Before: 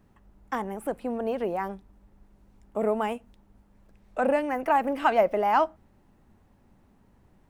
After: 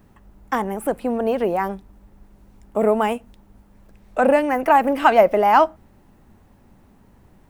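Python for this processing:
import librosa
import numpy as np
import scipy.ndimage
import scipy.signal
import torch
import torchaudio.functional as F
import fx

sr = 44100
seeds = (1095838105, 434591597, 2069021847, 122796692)

y = fx.high_shelf(x, sr, hz=12000.0, db=6.5)
y = y * 10.0 ** (8.0 / 20.0)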